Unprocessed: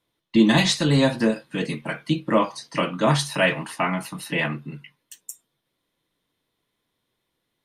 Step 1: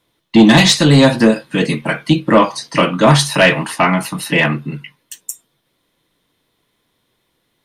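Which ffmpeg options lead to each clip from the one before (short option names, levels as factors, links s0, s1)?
-af "aeval=exprs='0.631*sin(PI/2*1.78*val(0)/0.631)':c=same,volume=1.26"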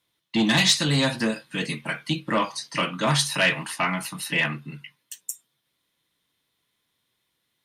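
-af "highpass=f=130:p=1,equalizer=f=430:w=0.43:g=-9.5,volume=0.501"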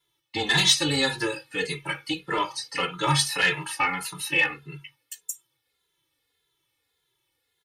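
-filter_complex "[0:a]aecho=1:1:2.3:0.98,asplit=2[s0][s1];[s1]adelay=2.5,afreqshift=-1.7[s2];[s0][s2]amix=inputs=2:normalize=1"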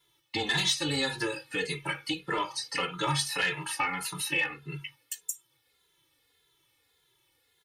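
-af "acompressor=threshold=0.01:ratio=2,volume=1.78"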